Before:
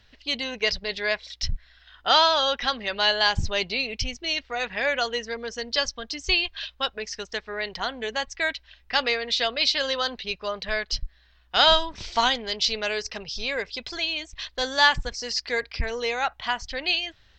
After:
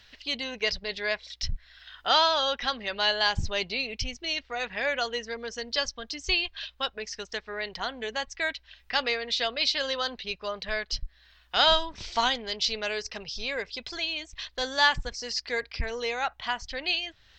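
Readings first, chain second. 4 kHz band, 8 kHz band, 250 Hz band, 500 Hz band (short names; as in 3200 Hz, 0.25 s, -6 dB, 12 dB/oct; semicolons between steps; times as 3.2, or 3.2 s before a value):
-3.5 dB, -3.5 dB, -3.5 dB, -3.5 dB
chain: mismatched tape noise reduction encoder only; gain -3.5 dB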